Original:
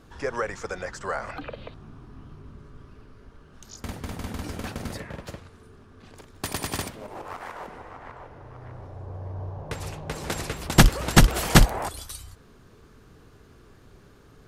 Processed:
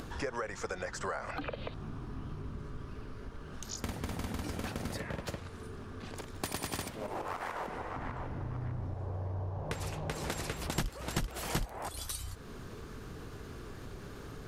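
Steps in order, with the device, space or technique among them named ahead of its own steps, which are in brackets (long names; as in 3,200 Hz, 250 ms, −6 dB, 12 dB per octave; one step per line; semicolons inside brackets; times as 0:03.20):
0:07.96–0:08.94: low shelf with overshoot 340 Hz +6.5 dB, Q 1.5
upward and downward compression (upward compression, threshold −42 dBFS; downward compressor 5 to 1, threshold −38 dBFS, peak gain reduction 25 dB)
level +3.5 dB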